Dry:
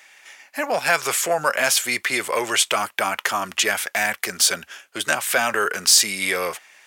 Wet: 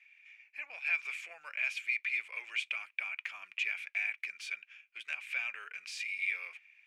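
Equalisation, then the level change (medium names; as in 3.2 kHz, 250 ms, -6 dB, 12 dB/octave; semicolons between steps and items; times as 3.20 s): band-pass filter 2.4 kHz, Q 13; -2.5 dB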